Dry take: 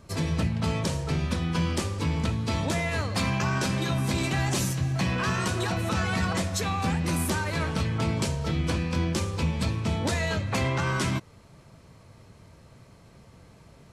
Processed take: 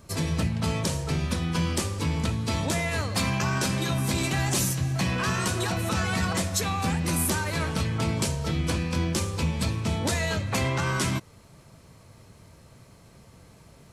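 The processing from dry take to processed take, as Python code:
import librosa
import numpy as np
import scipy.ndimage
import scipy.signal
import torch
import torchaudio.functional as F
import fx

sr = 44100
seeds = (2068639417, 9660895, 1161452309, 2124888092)

y = fx.high_shelf(x, sr, hz=7600.0, db=10.0)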